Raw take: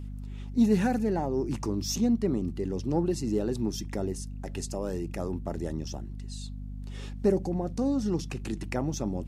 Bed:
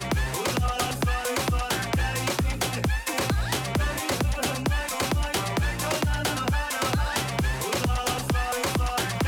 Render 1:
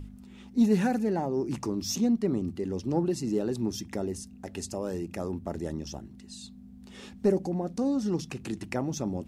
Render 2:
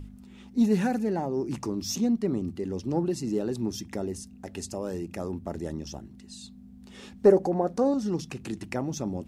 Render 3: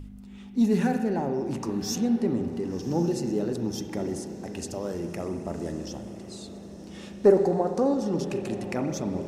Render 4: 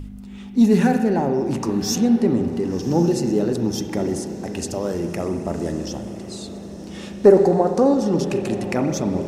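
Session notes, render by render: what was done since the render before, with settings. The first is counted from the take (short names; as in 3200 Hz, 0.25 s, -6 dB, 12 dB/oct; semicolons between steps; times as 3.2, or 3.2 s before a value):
de-hum 50 Hz, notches 3
7.25–7.94 band shelf 820 Hz +9 dB 2.5 oct
diffused feedback echo 1.105 s, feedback 57%, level -14 dB; spring tank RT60 1.7 s, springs 35/59 ms, chirp 70 ms, DRR 6 dB
gain +7.5 dB; limiter -2 dBFS, peak gain reduction 2 dB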